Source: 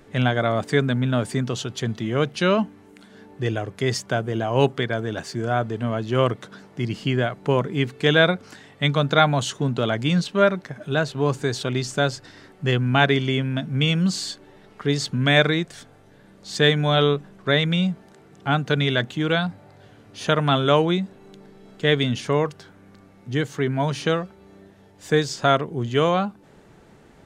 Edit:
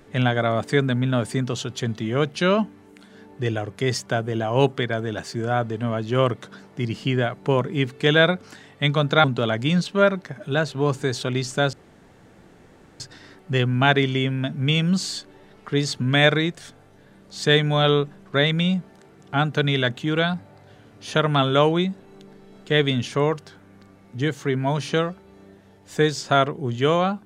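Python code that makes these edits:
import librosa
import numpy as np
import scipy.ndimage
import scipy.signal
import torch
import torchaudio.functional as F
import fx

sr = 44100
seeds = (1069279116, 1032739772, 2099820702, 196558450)

y = fx.edit(x, sr, fx.cut(start_s=9.24, length_s=0.4),
    fx.insert_room_tone(at_s=12.13, length_s=1.27), tone=tone)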